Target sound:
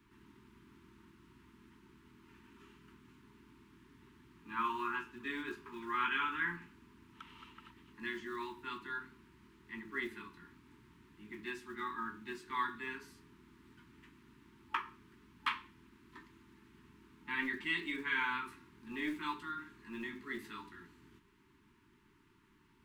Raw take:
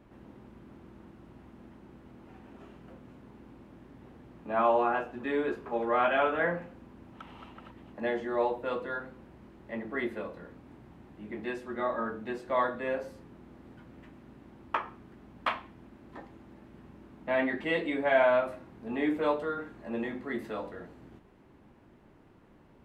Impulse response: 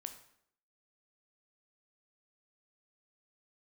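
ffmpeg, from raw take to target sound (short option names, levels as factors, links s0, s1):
-filter_complex "[0:a]tiltshelf=f=1400:g=-6,afftfilt=real='re*(1-between(b*sr/4096,420,870))':imag='im*(1-between(b*sr/4096,420,870))':win_size=4096:overlap=0.75,acrossover=split=260|690|2400[s0][s1][s2][s3];[s0]aeval=exprs='0.0188*(cos(1*acos(clip(val(0)/0.0188,-1,1)))-cos(1*PI/2))+0.00299*(cos(2*acos(clip(val(0)/0.0188,-1,1)))-cos(2*PI/2))':c=same[s4];[s1]acrusher=bits=5:mode=log:mix=0:aa=0.000001[s5];[s4][s5][s2][s3]amix=inputs=4:normalize=0,volume=0.596"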